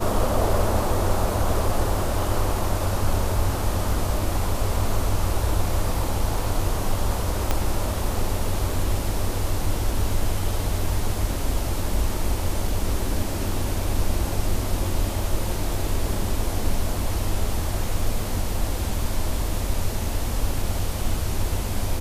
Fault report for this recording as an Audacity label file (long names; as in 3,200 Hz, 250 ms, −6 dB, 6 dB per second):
7.510000	7.510000	click −7 dBFS